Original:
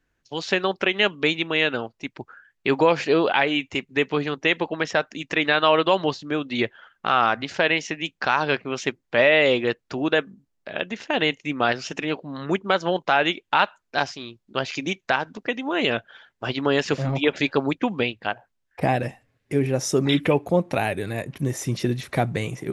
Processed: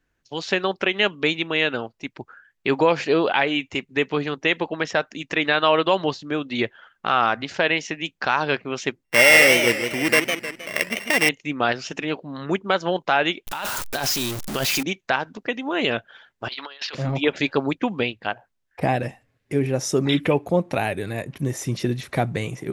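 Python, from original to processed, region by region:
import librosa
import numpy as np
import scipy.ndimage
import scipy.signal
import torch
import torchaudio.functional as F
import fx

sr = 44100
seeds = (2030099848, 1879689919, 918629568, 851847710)

y = fx.chain(x, sr, fx.sample_sort(block=16),
    fx.peak_eq(hz=2000.0, db=14.0, octaves=0.37),
    fx.echo_warbled(ms=156, feedback_pct=46, rate_hz=2.8, cents=184, wet_db=-7.0), at=(9.04, 11.29))
y = fx.chain(y, sr, fx.zero_step(step_db=-27.0),
    fx.high_shelf(hz=6300.0, db=10.5),
    fx.over_compress(threshold_db=-24.0, ratio=-1.0), at=(13.47, 14.83))
y = fx.chain(y, sr, fx.highpass(hz=990.0, slope=12),
    fx.high_shelf_res(hz=5700.0, db=-11.5, q=3.0),
    fx.over_compress(threshold_db=-33.0, ratio=-0.5), at=(16.48, 16.95))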